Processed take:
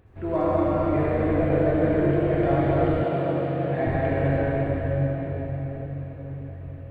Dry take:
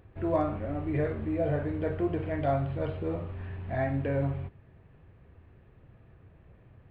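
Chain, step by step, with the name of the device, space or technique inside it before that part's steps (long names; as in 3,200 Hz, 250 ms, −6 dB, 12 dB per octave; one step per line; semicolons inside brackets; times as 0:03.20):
cathedral (convolution reverb RT60 5.5 s, pre-delay 61 ms, DRR −8 dB)
0:03.04–0:03.87: high-pass filter 130 Hz 24 dB per octave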